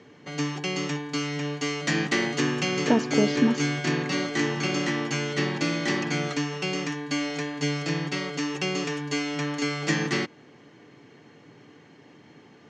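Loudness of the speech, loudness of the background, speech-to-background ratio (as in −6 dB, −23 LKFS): −25.5 LKFS, −27.5 LKFS, 2.0 dB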